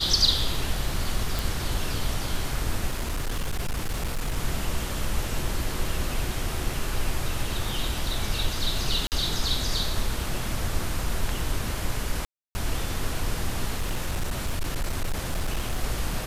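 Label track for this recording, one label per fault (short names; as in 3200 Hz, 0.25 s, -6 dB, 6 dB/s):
1.390000	1.390000	pop
2.910000	4.380000	clipped -23.5 dBFS
6.730000	6.730000	gap 3.2 ms
9.070000	9.120000	gap 48 ms
12.250000	12.550000	gap 0.3 s
13.740000	15.840000	clipped -22.5 dBFS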